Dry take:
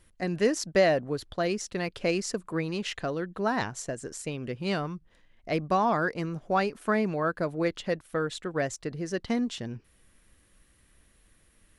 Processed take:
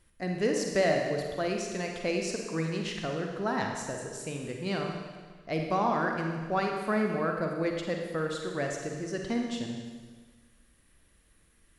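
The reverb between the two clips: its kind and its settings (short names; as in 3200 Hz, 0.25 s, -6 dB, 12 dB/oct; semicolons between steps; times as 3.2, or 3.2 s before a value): Schroeder reverb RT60 1.5 s, DRR 1.5 dB; gain -4 dB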